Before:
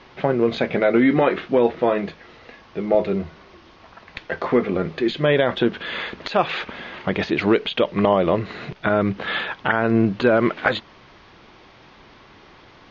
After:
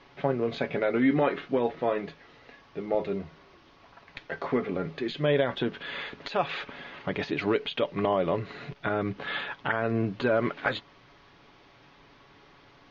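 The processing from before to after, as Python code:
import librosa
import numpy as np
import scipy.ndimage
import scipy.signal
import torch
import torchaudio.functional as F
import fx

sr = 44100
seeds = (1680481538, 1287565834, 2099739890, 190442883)

y = x + 0.41 * np.pad(x, (int(7.1 * sr / 1000.0), 0))[:len(x)]
y = F.gain(torch.from_numpy(y), -8.5).numpy()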